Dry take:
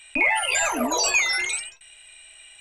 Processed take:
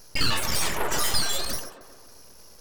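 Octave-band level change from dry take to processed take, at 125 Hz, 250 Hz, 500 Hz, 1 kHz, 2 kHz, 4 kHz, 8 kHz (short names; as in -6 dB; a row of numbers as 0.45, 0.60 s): n/a, -6.0 dB, -4.5 dB, -5.0 dB, -10.5 dB, +1.0 dB, -4.0 dB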